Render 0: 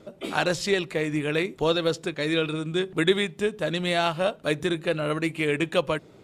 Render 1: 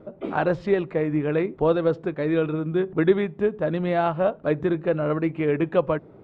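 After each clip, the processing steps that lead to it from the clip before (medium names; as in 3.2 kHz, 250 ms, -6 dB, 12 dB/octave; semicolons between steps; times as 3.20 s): low-pass 1.2 kHz 12 dB/octave; trim +3.5 dB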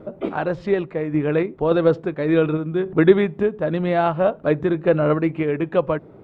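random-step tremolo; trim +6 dB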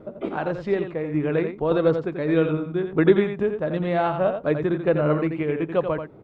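delay 86 ms -7.5 dB; trim -3.5 dB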